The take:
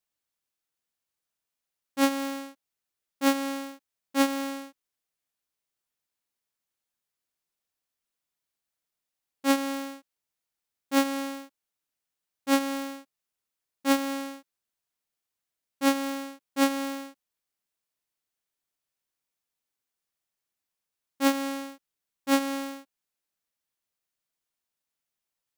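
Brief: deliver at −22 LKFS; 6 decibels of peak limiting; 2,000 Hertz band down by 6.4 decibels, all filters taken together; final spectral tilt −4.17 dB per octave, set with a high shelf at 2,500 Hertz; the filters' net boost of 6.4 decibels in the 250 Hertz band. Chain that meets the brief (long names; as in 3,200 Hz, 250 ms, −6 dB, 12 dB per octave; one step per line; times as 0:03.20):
parametric band 250 Hz +7 dB
parametric band 2,000 Hz −4 dB
high-shelf EQ 2,500 Hz −8.5 dB
level +5.5 dB
brickwall limiter −10.5 dBFS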